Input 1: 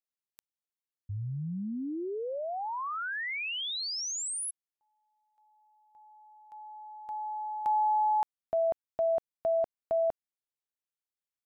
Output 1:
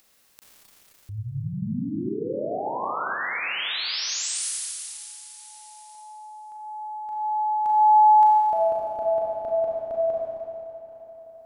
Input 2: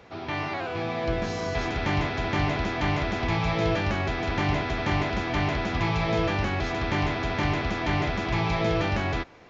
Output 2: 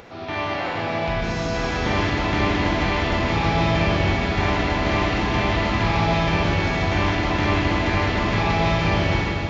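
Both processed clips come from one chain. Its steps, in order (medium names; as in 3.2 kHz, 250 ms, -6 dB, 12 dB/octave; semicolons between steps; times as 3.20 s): Schroeder reverb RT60 3 s, combs from 29 ms, DRR -5 dB; upward compressor, threshold -38 dBFS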